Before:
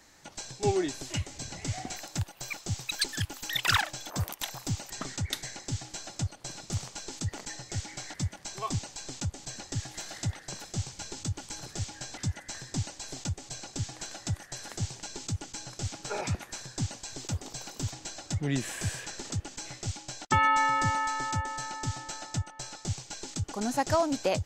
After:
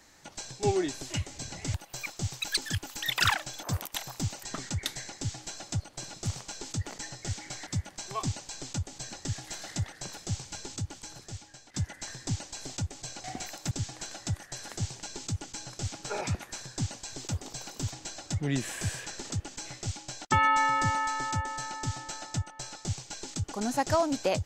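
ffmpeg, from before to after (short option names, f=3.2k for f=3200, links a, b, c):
-filter_complex "[0:a]asplit=5[a][b][c][d][e];[a]atrim=end=1.742[f];[b]atrim=start=2.208:end=12.21,asetpts=PTS-STARTPTS,afade=t=out:st=8.822:d=1.18:silence=0.16788[g];[c]atrim=start=12.21:end=13.712,asetpts=PTS-STARTPTS,afade=t=in:d=0.004:c=hsin:silence=0.16788[h];[d]atrim=start=1.738:end=2.212[i];[e]atrim=start=13.708[j];[g][h]concat=n=2:v=0:a=1[k];[f][k]acrossfade=d=0.004:c1=hsin:c2=hsin[l];[l][i]acrossfade=d=0.004:c1=hsin:c2=hsin[m];[m][j]acrossfade=d=0.004:c1=hsin:c2=hsin"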